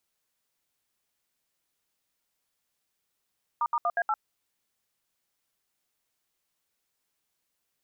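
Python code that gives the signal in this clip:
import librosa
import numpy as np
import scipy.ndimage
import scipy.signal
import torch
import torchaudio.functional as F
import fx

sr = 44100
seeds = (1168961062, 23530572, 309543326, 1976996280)

y = fx.dtmf(sr, digits='**1A8', tone_ms=50, gap_ms=70, level_db=-26.0)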